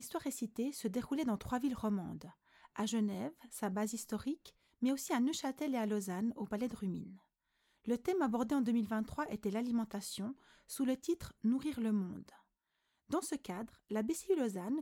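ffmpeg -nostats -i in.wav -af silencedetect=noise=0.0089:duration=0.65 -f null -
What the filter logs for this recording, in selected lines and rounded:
silence_start: 7.03
silence_end: 7.88 | silence_duration: 0.84
silence_start: 12.29
silence_end: 13.11 | silence_duration: 0.82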